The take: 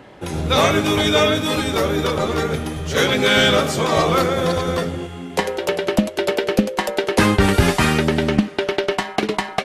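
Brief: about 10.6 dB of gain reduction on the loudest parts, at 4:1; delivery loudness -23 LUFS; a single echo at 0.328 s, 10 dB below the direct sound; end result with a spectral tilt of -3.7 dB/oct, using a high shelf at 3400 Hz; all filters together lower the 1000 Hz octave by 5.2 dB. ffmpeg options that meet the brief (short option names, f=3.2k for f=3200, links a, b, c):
-af "equalizer=f=1k:t=o:g=-8,highshelf=f=3.4k:g=7.5,acompressor=threshold=-23dB:ratio=4,aecho=1:1:328:0.316,volume=2.5dB"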